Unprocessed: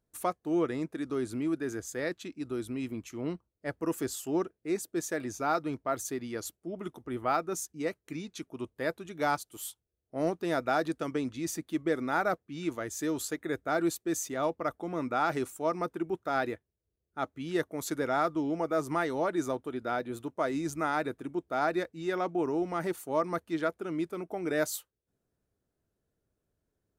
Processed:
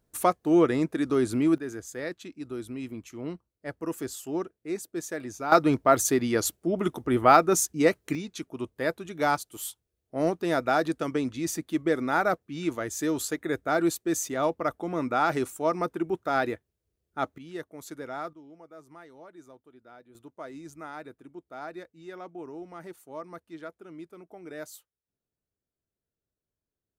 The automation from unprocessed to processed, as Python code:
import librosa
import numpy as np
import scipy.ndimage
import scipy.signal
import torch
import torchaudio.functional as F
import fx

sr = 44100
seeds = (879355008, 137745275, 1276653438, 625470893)

y = fx.gain(x, sr, db=fx.steps((0.0, 8.0), (1.58, -1.0), (5.52, 11.5), (8.15, 4.0), (17.38, -7.5), (18.33, -19.0), (20.15, -10.5)))